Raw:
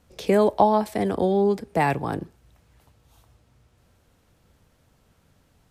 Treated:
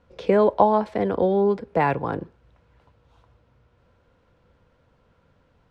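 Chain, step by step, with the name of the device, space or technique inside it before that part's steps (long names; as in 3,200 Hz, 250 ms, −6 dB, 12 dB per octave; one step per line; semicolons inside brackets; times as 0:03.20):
inside a cardboard box (low-pass filter 3,300 Hz 12 dB per octave; hollow resonant body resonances 510/1,000/1,400 Hz, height 8 dB, ringing for 30 ms)
level −1 dB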